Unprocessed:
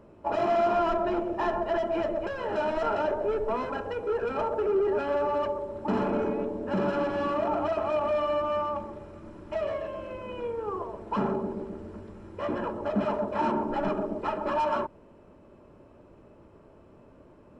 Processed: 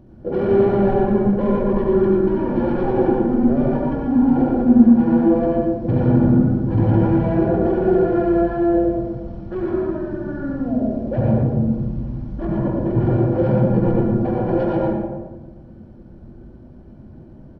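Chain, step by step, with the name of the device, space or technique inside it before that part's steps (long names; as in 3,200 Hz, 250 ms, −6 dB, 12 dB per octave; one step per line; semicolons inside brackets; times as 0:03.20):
monster voice (pitch shifter −9.5 semitones; low-shelf EQ 180 Hz +7.5 dB; single-tap delay 117 ms −8.5 dB; convolution reverb RT60 1.2 s, pre-delay 67 ms, DRR −2.5 dB)
level +3.5 dB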